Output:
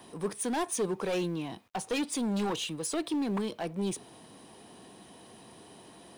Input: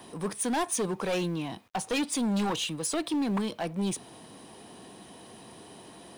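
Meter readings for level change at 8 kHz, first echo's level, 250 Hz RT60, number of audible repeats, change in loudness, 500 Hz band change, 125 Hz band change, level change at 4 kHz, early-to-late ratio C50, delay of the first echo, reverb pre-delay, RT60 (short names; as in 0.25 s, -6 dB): -3.5 dB, none, none, none, -2.5 dB, -0.5 dB, -3.0 dB, -3.5 dB, none, none, none, none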